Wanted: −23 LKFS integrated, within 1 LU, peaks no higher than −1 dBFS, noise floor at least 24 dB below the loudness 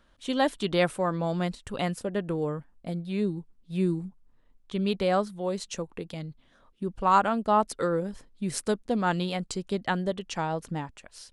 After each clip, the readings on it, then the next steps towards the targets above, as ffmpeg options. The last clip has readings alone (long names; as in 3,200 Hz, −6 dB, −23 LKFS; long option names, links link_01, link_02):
integrated loudness −29.0 LKFS; sample peak −8.5 dBFS; target loudness −23.0 LKFS
→ -af "volume=6dB"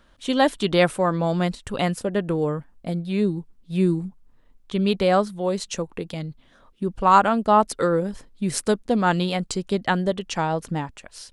integrated loudness −23.0 LKFS; sample peak −2.5 dBFS; background noise floor −56 dBFS